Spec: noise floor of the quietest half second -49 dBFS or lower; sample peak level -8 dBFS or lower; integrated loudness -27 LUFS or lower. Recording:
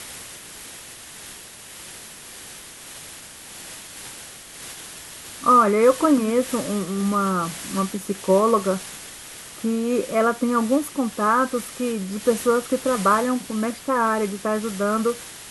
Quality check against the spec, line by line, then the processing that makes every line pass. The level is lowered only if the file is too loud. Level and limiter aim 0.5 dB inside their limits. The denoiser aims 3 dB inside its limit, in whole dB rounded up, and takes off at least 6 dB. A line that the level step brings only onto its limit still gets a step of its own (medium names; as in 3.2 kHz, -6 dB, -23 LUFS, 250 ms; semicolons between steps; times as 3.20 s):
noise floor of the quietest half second -41 dBFS: fail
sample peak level -5.0 dBFS: fail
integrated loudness -21.5 LUFS: fail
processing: noise reduction 6 dB, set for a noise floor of -41 dBFS; trim -6 dB